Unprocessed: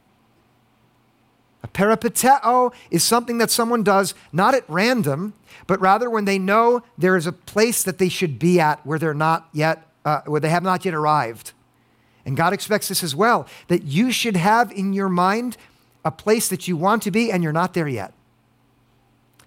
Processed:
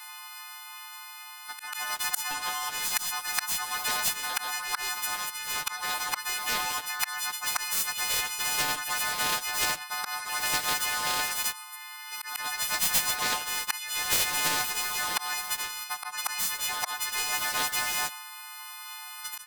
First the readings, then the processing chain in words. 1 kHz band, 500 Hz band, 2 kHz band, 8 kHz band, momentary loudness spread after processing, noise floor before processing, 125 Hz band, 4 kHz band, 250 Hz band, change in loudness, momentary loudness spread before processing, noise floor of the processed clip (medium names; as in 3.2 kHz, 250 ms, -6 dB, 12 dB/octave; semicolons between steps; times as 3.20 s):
-13.5 dB, -25.5 dB, -5.0 dB, -1.0 dB, 14 LU, -60 dBFS, -27.5 dB, 0.0 dB, -29.0 dB, -8.5 dB, 8 LU, -44 dBFS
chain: partials quantised in pitch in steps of 3 st; steep high-pass 810 Hz 96 dB/octave; dynamic bell 1.8 kHz, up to +4 dB, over -38 dBFS, Q 6.2; compression 2:1, threshold -25 dBFS, peak gain reduction 11.5 dB; waveshaping leveller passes 1; gain riding 2 s; pre-echo 140 ms -14.5 dB; slow attack 537 ms; spectrum-flattening compressor 4:1